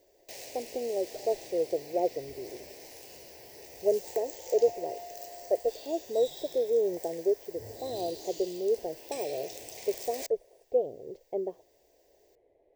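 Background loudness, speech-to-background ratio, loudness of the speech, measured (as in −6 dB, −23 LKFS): −43.5 LKFS, 11.5 dB, −32.0 LKFS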